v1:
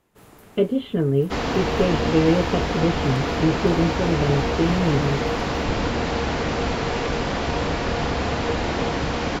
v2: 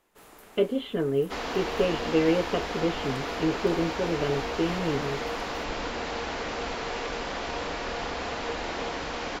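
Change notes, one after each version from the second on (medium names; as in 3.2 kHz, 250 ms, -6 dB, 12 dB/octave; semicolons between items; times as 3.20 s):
second sound -5.5 dB; master: add peaking EQ 110 Hz -14.5 dB 2.3 oct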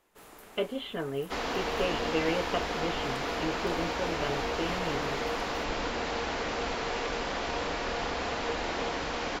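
speech: add resonant low shelf 570 Hz -7 dB, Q 1.5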